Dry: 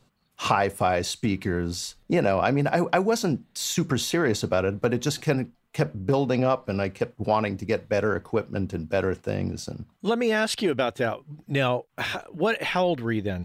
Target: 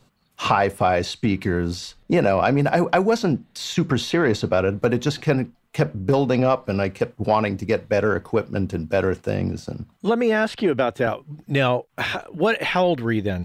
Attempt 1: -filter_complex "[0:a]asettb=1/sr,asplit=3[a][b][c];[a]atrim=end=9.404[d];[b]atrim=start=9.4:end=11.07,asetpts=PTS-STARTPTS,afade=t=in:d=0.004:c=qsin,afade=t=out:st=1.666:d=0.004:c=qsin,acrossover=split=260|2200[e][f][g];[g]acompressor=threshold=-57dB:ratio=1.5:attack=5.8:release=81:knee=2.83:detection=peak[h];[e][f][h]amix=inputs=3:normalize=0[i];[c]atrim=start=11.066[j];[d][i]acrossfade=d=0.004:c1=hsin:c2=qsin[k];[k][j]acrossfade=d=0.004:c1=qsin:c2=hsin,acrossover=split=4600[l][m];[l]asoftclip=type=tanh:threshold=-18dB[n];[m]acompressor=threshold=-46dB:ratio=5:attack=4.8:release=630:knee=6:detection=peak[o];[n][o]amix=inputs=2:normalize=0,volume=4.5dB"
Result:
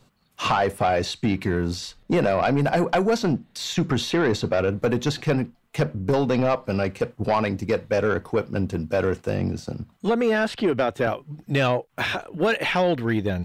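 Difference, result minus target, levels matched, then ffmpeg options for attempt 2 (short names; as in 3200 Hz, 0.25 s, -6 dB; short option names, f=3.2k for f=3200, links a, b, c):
soft clip: distortion +13 dB
-filter_complex "[0:a]asettb=1/sr,asplit=3[a][b][c];[a]atrim=end=9.404[d];[b]atrim=start=9.4:end=11.07,asetpts=PTS-STARTPTS,afade=t=in:d=0.004:c=qsin,afade=t=out:st=1.666:d=0.004:c=qsin,acrossover=split=260|2200[e][f][g];[g]acompressor=threshold=-57dB:ratio=1.5:attack=5.8:release=81:knee=2.83:detection=peak[h];[e][f][h]amix=inputs=3:normalize=0[i];[c]atrim=start=11.066[j];[d][i]acrossfade=d=0.004:c1=hsin:c2=qsin[k];[k][j]acrossfade=d=0.004:c1=qsin:c2=hsin,acrossover=split=4600[l][m];[l]asoftclip=type=tanh:threshold=-8.5dB[n];[m]acompressor=threshold=-46dB:ratio=5:attack=4.8:release=630:knee=6:detection=peak[o];[n][o]amix=inputs=2:normalize=0,volume=4.5dB"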